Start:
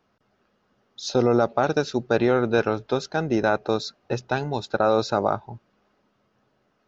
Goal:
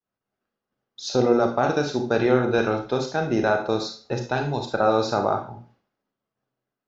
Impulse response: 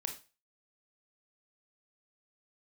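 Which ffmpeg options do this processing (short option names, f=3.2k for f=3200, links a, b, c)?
-filter_complex "[0:a]agate=range=-33dB:threshold=-56dB:ratio=3:detection=peak[a];[1:a]atrim=start_sample=2205,asetrate=37926,aresample=44100[b];[a][b]afir=irnorm=-1:irlink=0"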